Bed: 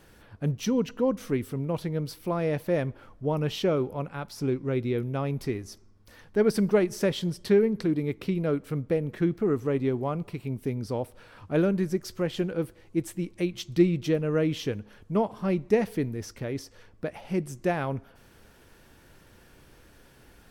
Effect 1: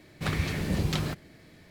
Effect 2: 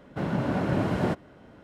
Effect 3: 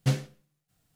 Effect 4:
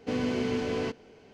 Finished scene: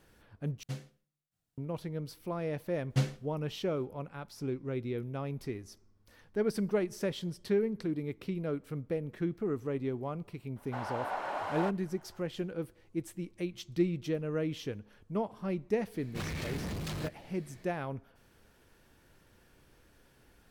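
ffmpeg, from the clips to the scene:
-filter_complex "[3:a]asplit=2[a][b];[0:a]volume=-8dB[c];[b]highshelf=f=8.9k:g=-6[d];[2:a]highpass=f=830:t=q:w=2.5[e];[1:a]asoftclip=type=hard:threshold=-31.5dB[f];[c]asplit=2[g][h];[g]atrim=end=0.634[i];[a]atrim=end=0.95,asetpts=PTS-STARTPTS,volume=-14.5dB[j];[h]atrim=start=1.576[k];[d]atrim=end=0.95,asetpts=PTS-STARTPTS,volume=-3.5dB,afade=t=in:d=0.004:c=hsin,afade=t=out:st=0.946:d=0.004:c=hsin,adelay=2900[l];[e]atrim=end=1.63,asetpts=PTS-STARTPTS,volume=-7dB,afade=t=in:d=0.004:c=hsin,afade=t=out:st=1.626:d=0.004:c=hsin,adelay=10560[m];[f]atrim=end=1.7,asetpts=PTS-STARTPTS,volume=-3.5dB,afade=t=in:d=0.004:c=hsin,afade=t=out:st=1.696:d=0.004:c=hsin,adelay=15940[n];[i][j]acrossfade=d=0.004:c1=hsin:c2=hsin[o];[o][k]acrossfade=d=0.004:c1=hsin:c2=hsin[p];[p][l][m][n]amix=inputs=4:normalize=0"

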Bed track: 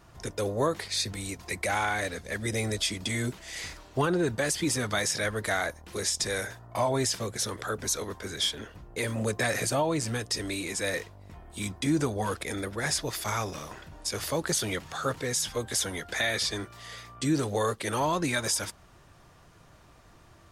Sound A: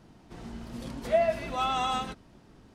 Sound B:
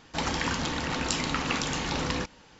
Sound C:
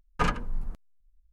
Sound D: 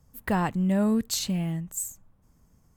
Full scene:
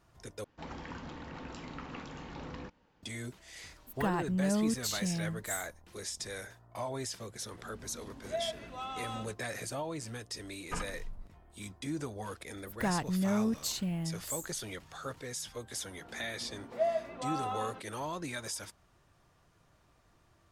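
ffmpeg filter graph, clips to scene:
-filter_complex "[4:a]asplit=2[a][b];[1:a]asplit=2[c][d];[0:a]volume=-11dB[e];[2:a]lowpass=f=1.3k:p=1[f];[d]bandpass=f=660:t=q:w=0.63:csg=0[g];[e]asplit=2[h][i];[h]atrim=end=0.444[j];[f]atrim=end=2.59,asetpts=PTS-STARTPTS,volume=-12.5dB[k];[i]atrim=start=3.026[l];[a]atrim=end=2.76,asetpts=PTS-STARTPTS,volume=-6.5dB,afade=t=in:d=0.004:c=hsin,afade=t=out:st=2.756:d=0.004:c=hsin,adelay=164493S[m];[c]atrim=end=2.74,asetpts=PTS-STARTPTS,volume=-12dB,afade=t=in:d=0.004:c=hsin,afade=t=out:st=2.736:d=0.004:c=hsin,adelay=7200[n];[3:a]atrim=end=1.32,asetpts=PTS-STARTPTS,volume=-12.5dB,afade=t=in:d=0.004:c=hsin,afade=t=out:st=1.316:d=0.004:c=hsin,adelay=10520[o];[b]atrim=end=2.76,asetpts=PTS-STARTPTS,volume=-6.5dB,afade=t=in:d=0.004:c=hsin,afade=t=out:st=2.756:d=0.004:c=hsin,adelay=12530[p];[g]atrim=end=2.74,asetpts=PTS-STARTPTS,volume=-6dB,afade=t=in:d=0.004:c=hsin,afade=t=out:st=2.736:d=0.004:c=hsin,adelay=15670[q];[j][k]acrossfade=d=0.004:c1=hsin:c2=hsin[r];[r][l]acrossfade=d=0.004:c1=hsin:c2=hsin[s];[s][m][n][o][p][q]amix=inputs=6:normalize=0"

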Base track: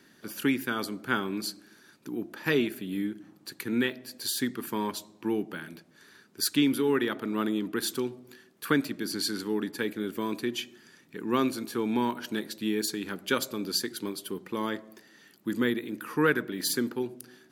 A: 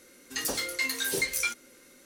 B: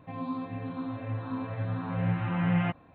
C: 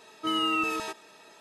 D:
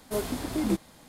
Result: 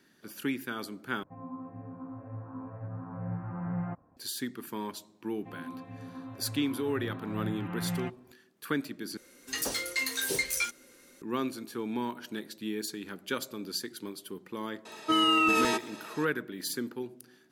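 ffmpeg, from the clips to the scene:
-filter_complex "[2:a]asplit=2[a][b];[0:a]volume=-6dB[c];[a]lowpass=f=1.4k:w=0.5412,lowpass=f=1.4k:w=1.3066[d];[3:a]alimiter=level_in=21.5dB:limit=-1dB:release=50:level=0:latency=1[e];[c]asplit=3[f][g][h];[f]atrim=end=1.234[i];[d]atrim=end=2.94,asetpts=PTS-STARTPTS,volume=-7.5dB[j];[g]atrim=start=4.166:end=9.174[k];[1:a]atrim=end=2.05,asetpts=PTS-STARTPTS,volume=-1.5dB[l];[h]atrim=start=11.216[m];[b]atrim=end=2.94,asetpts=PTS-STARTPTS,volume=-8dB,afade=t=in:d=0.004:c=hsin,afade=t=out:st=2.936:d=0.004:c=hsin,adelay=5380[n];[e]atrim=end=1.4,asetpts=PTS-STARTPTS,volume=-15dB,afade=t=in:d=0.004:c=hsin,afade=t=out:st=1.396:d=0.004:c=hsin,adelay=14850[o];[i][j]acrossfade=d=0.004:c1=hsin:c2=hsin[p];[p][k]acrossfade=d=0.004:c1=hsin:c2=hsin[q];[q][l]acrossfade=d=0.004:c1=hsin:c2=hsin[r];[r][m]acrossfade=d=0.004:c1=hsin:c2=hsin[s];[s][n][o]amix=inputs=3:normalize=0"

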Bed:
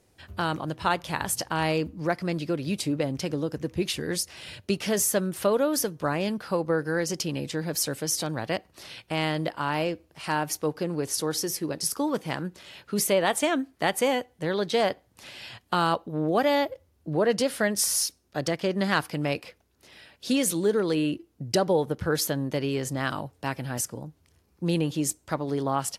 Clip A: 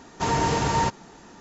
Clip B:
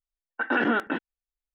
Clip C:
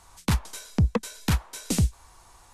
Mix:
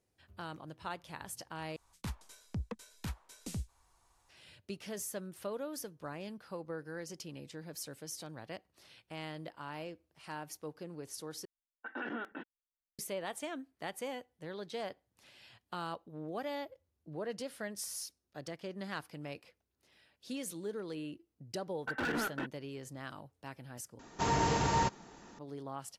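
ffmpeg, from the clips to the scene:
-filter_complex "[2:a]asplit=2[a][b];[0:a]volume=-16.5dB[c];[b]asoftclip=type=hard:threshold=-23dB[d];[c]asplit=4[e][f][g][h];[e]atrim=end=1.764[i];[3:a]atrim=end=2.53,asetpts=PTS-STARTPTS,volume=-17dB[j];[f]atrim=start=4.286:end=11.454[k];[a]atrim=end=1.54,asetpts=PTS-STARTPTS,volume=-16.5dB[l];[g]atrim=start=12.986:end=23.994[m];[1:a]atrim=end=1.4,asetpts=PTS-STARTPTS,volume=-7dB[n];[h]atrim=start=25.386[o];[d]atrim=end=1.54,asetpts=PTS-STARTPTS,volume=-8.5dB,afade=t=in:d=0.004:c=hsin,afade=t=out:st=1.536:d=0.004:c=hsin,adelay=947268S[p];[i][j]acrossfade=d=0.004:c1=hsin:c2=hsin[q];[q][k]acrossfade=d=0.004:c1=hsin:c2=hsin[r];[r][l]acrossfade=d=0.004:c1=hsin:c2=hsin[s];[s][m]acrossfade=d=0.004:c1=hsin:c2=hsin[t];[t][n]acrossfade=d=0.004:c1=hsin:c2=hsin[u];[u][o]acrossfade=d=0.004:c1=hsin:c2=hsin[v];[v][p]amix=inputs=2:normalize=0"

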